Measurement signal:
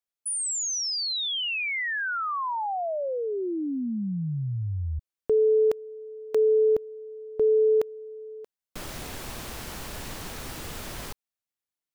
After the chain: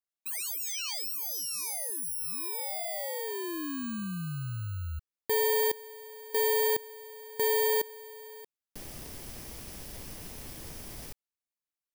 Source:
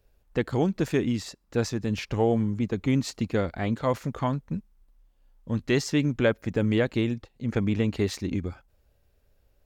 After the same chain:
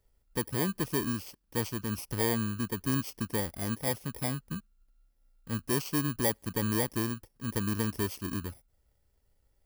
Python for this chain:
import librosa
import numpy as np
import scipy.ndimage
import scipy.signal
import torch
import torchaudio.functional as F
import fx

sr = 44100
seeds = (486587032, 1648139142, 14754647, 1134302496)

y = fx.bit_reversed(x, sr, seeds[0], block=32)
y = F.gain(torch.from_numpy(y), -6.0).numpy()